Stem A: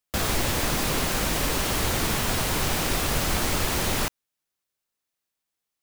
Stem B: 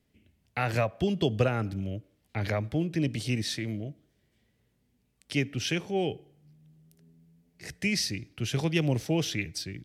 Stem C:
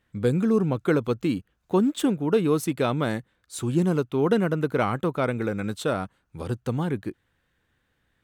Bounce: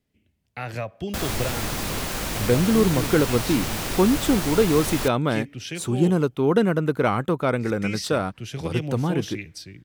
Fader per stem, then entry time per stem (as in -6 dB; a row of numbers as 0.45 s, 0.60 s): -3.0 dB, -3.5 dB, +2.5 dB; 1.00 s, 0.00 s, 2.25 s